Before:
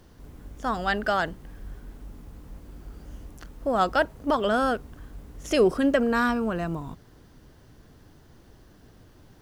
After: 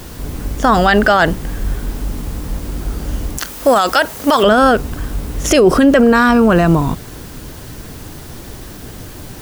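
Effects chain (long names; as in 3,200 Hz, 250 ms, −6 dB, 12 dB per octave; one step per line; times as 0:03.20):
0:03.38–0:04.43: spectral tilt +3.5 dB per octave
bit-depth reduction 10 bits, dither triangular
boost into a limiter +21.5 dB
level −1 dB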